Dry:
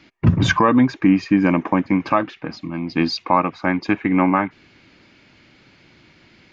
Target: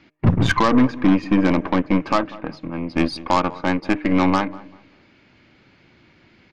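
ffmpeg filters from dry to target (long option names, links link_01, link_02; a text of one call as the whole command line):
ffmpeg -i in.wav -filter_complex "[0:a]highshelf=frequency=4000:gain=-9.5,bandreject=frequency=152:width_type=h:width=4,bandreject=frequency=304:width_type=h:width=4,bandreject=frequency=456:width_type=h:width=4,bandreject=frequency=608:width_type=h:width=4,aeval=exprs='0.668*(cos(1*acos(clip(val(0)/0.668,-1,1)))-cos(1*PI/2))+0.0668*(cos(5*acos(clip(val(0)/0.668,-1,1)))-cos(5*PI/2))+0.0376*(cos(7*acos(clip(val(0)/0.668,-1,1)))-cos(7*PI/2))+0.075*(cos(8*acos(clip(val(0)/0.668,-1,1)))-cos(8*PI/2))':channel_layout=same,asplit=2[link_01][link_02];[link_02]adelay=194,lowpass=frequency=1400:poles=1,volume=-18dB,asplit=2[link_03][link_04];[link_04]adelay=194,lowpass=frequency=1400:poles=1,volume=0.3,asplit=2[link_05][link_06];[link_06]adelay=194,lowpass=frequency=1400:poles=1,volume=0.3[link_07];[link_03][link_05][link_07]amix=inputs=3:normalize=0[link_08];[link_01][link_08]amix=inputs=2:normalize=0,volume=-2dB" out.wav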